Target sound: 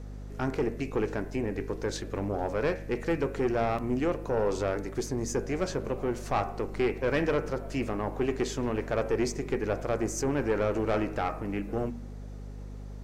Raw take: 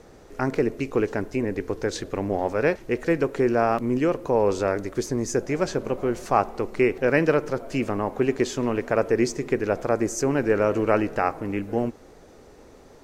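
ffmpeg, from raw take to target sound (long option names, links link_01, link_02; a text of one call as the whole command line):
ffmpeg -i in.wav -af "bandreject=frequency=78.62:width_type=h:width=4,bandreject=frequency=157.24:width_type=h:width=4,bandreject=frequency=235.86:width_type=h:width=4,bandreject=frequency=314.48:width_type=h:width=4,bandreject=frequency=393.1:width_type=h:width=4,bandreject=frequency=471.72:width_type=h:width=4,bandreject=frequency=550.34:width_type=h:width=4,bandreject=frequency=628.96:width_type=h:width=4,bandreject=frequency=707.58:width_type=h:width=4,bandreject=frequency=786.2:width_type=h:width=4,bandreject=frequency=864.82:width_type=h:width=4,bandreject=frequency=943.44:width_type=h:width=4,bandreject=frequency=1022.06:width_type=h:width=4,bandreject=frequency=1100.68:width_type=h:width=4,bandreject=frequency=1179.3:width_type=h:width=4,bandreject=frequency=1257.92:width_type=h:width=4,bandreject=frequency=1336.54:width_type=h:width=4,bandreject=frequency=1415.16:width_type=h:width=4,bandreject=frequency=1493.78:width_type=h:width=4,bandreject=frequency=1572.4:width_type=h:width=4,bandreject=frequency=1651.02:width_type=h:width=4,bandreject=frequency=1729.64:width_type=h:width=4,bandreject=frequency=1808.26:width_type=h:width=4,bandreject=frequency=1886.88:width_type=h:width=4,bandreject=frequency=1965.5:width_type=h:width=4,bandreject=frequency=2044.12:width_type=h:width=4,bandreject=frequency=2122.74:width_type=h:width=4,bandreject=frequency=2201.36:width_type=h:width=4,bandreject=frequency=2279.98:width_type=h:width=4,bandreject=frequency=2358.6:width_type=h:width=4,bandreject=frequency=2437.22:width_type=h:width=4,bandreject=frequency=2515.84:width_type=h:width=4,bandreject=frequency=2594.46:width_type=h:width=4,bandreject=frequency=2673.08:width_type=h:width=4,bandreject=frequency=2751.7:width_type=h:width=4,bandreject=frequency=2830.32:width_type=h:width=4,aeval=exprs='(tanh(6.31*val(0)+0.3)-tanh(0.3))/6.31':channel_layout=same,aeval=exprs='val(0)+0.0158*(sin(2*PI*50*n/s)+sin(2*PI*2*50*n/s)/2+sin(2*PI*3*50*n/s)/3+sin(2*PI*4*50*n/s)/4+sin(2*PI*5*50*n/s)/5)':channel_layout=same,volume=-3.5dB" out.wav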